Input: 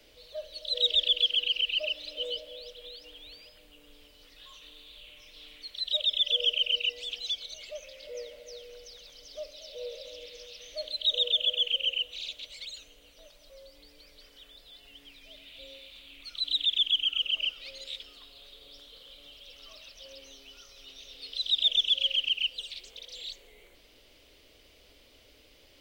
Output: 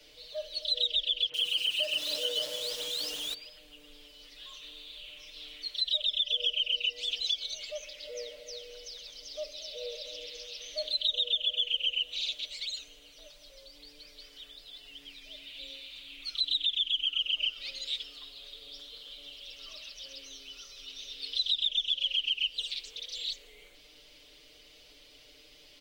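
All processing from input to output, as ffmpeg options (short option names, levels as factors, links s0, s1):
-filter_complex "[0:a]asettb=1/sr,asplit=3[s0][s1][s2];[s0]atrim=end=1.294[s3];[s1]atrim=start=1.29:end=3.34,asetpts=PTS-STARTPTS,afade=t=in:d=0.004:c=qsin,afade=t=out:st=2.046:d=0.004:c=qsin,aeval=exprs='val(0)+0.5*0.0178*sgn(val(0))':c=same,highpass=f=130:p=1,acrossover=split=2200[s4][s5];[s5]adelay=50[s6];[s4][s6]amix=inputs=2:normalize=0,atrim=end_sample=90405[s7];[s2]atrim=start=3.336[s8];[s3][s7]acrossfade=d=0.004:c1=hsin:c2=qsin[s9];[s9][s8]acrossfade=d=0.004:c1=qsin:c2=hsin,equalizer=f=4500:t=o:w=2.1:g=7,aecho=1:1:6.7:0.74,acrossover=split=170[s10][s11];[s11]acompressor=threshold=0.0794:ratio=10[s12];[s10][s12]amix=inputs=2:normalize=0,volume=0.668"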